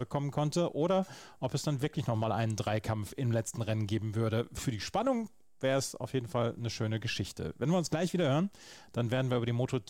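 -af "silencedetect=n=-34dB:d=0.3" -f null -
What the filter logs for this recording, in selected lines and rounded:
silence_start: 1.03
silence_end: 1.43 | silence_duration: 0.40
silence_start: 5.25
silence_end: 5.63 | silence_duration: 0.39
silence_start: 8.47
silence_end: 8.94 | silence_duration: 0.48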